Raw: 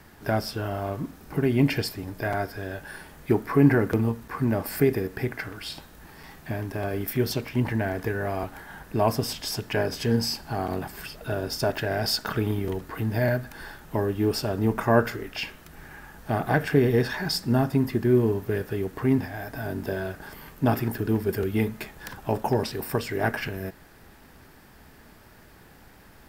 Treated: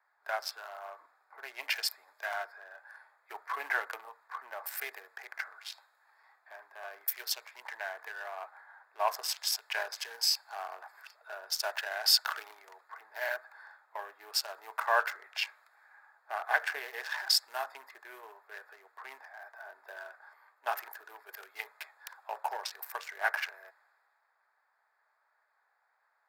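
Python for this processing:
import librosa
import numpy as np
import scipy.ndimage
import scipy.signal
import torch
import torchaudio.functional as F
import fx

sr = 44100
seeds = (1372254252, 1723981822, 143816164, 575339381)

y = fx.wiener(x, sr, points=15)
y = scipy.signal.sosfilt(scipy.signal.bessel(6, 1200.0, 'highpass', norm='mag', fs=sr, output='sos'), y)
y = fx.band_widen(y, sr, depth_pct=40)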